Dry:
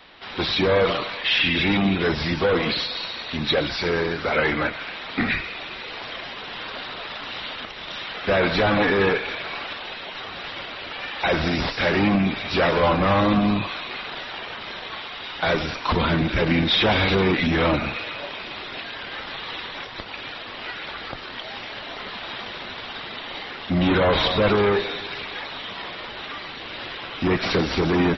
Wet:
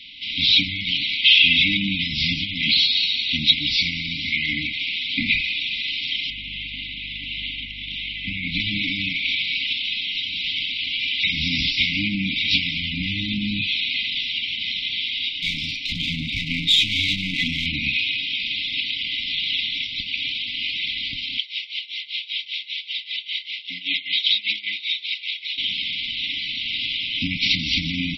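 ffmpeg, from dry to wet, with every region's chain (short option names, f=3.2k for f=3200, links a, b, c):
-filter_complex "[0:a]asettb=1/sr,asplit=3[a][b][c];[a]atrim=end=6.304[d];[b]atrim=start=6.3:end=8.6,asetpts=PTS-STARTPTS,afade=t=in:d=0.004:c=qsin,afade=t=out:st=2.296:d=0.004:c=qsin,aeval=exprs='val(0)+0.00794*(sin(2*PI*50*n/s)+sin(2*PI*2*50*n/s)/2+sin(2*PI*3*50*n/s)/3+sin(2*PI*4*50*n/s)/4+sin(2*PI*5*50*n/s)/5)':c=same,lowpass=2.3k[e];[c]atrim=start=8.596[f];[d][e]acrossfade=d=0.004:c1=hsin:c2=qsin[g];[g][f]acrossfade=d=0.004:c1=qsin:c2=hsin,asettb=1/sr,asplit=3[h][i][j];[h]atrim=end=15.294[k];[i]atrim=start=15.29:end=17.66,asetpts=PTS-STARTPTS,afade=t=in:d=0.004:c=qsin,afade=t=out:st=2.366:d=0.004:c=qsin,flanger=delay=6.1:depth=2.1:regen=-44:speed=1.5:shape=triangular,aeval=exprs='clip(val(0),-1,0.0473)':c=same[l];[j]atrim=start=17.656[m];[k][l]acrossfade=d=0.004:c1=hsin:c2=qsin[n];[n][m]acrossfade=d=0.004:c1=qsin:c2=hsin,asettb=1/sr,asplit=3[o][p][q];[o]atrim=end=21.384[r];[p]atrim=start=21.38:end=25.58,asetpts=PTS-STARTPTS,afade=t=in:d=0.004:c=qsin,afade=t=out:st=4.196:d=0.004:c=qsin,highpass=700,tremolo=f=5.1:d=0.88[s];[q]atrim=start=25.576[t];[r][s]acrossfade=d=0.004:c1=hsin:c2=qsin[u];[u][t]acrossfade=d=0.004:c1=qsin:c2=hsin,acompressor=threshold=-21dB:ratio=6,equalizer=f=3.2k:t=o:w=1.5:g=13.5,afftfilt=real='re*(1-between(b*sr/4096,310,2000))':imag='im*(1-between(b*sr/4096,310,2000))':win_size=4096:overlap=0.75,volume=-1dB"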